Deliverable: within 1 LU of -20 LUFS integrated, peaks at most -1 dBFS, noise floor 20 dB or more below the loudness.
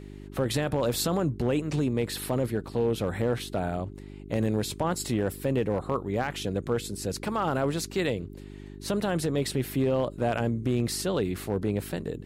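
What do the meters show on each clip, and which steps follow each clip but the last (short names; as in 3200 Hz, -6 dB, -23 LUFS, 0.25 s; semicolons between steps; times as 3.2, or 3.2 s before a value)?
clipped 0.6%; flat tops at -18.5 dBFS; hum 50 Hz; harmonics up to 400 Hz; hum level -40 dBFS; loudness -29.0 LUFS; peak -18.5 dBFS; loudness target -20.0 LUFS
-> clip repair -18.5 dBFS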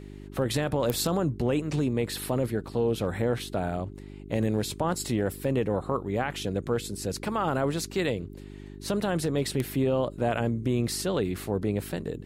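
clipped 0.0%; hum 50 Hz; harmonics up to 400 Hz; hum level -40 dBFS
-> de-hum 50 Hz, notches 8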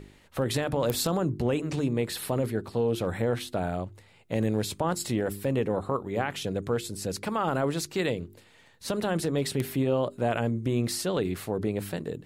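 hum none; loudness -29.0 LUFS; peak -10.5 dBFS; loudness target -20.0 LUFS
-> gain +9 dB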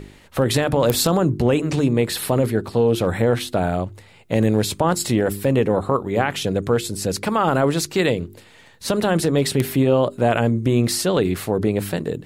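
loudness -20.0 LUFS; peak -1.5 dBFS; noise floor -48 dBFS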